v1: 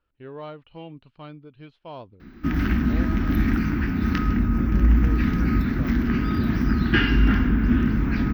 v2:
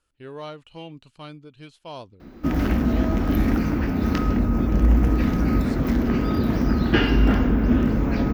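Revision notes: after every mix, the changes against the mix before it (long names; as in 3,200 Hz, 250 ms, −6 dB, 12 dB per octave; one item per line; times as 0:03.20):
speech: remove high-frequency loss of the air 330 metres
background: remove drawn EQ curve 210 Hz 0 dB, 360 Hz −4 dB, 530 Hz −16 dB, 1,600 Hz +4 dB, 2,500 Hz +1 dB, 6,000 Hz −4 dB, 8,900 Hz −24 dB, 14,000 Hz −1 dB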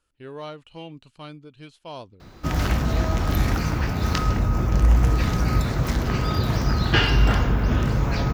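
background: add octave-band graphic EQ 125/250/1,000/4,000/8,000 Hz +8/−12/+4/+6/+12 dB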